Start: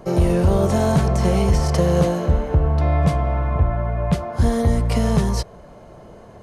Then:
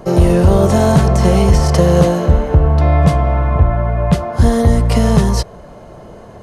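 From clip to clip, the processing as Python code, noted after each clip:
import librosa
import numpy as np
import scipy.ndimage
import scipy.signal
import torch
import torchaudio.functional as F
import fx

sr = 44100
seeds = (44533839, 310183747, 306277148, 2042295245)

y = fx.notch(x, sr, hz=2300.0, q=24.0)
y = y * 10.0 ** (6.5 / 20.0)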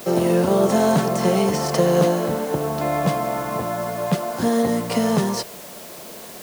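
y = scipy.signal.sosfilt(scipy.signal.butter(4, 180.0, 'highpass', fs=sr, output='sos'), x)
y = fx.quant_dither(y, sr, seeds[0], bits=6, dither='triangular')
y = y * 10.0 ** (-4.0 / 20.0)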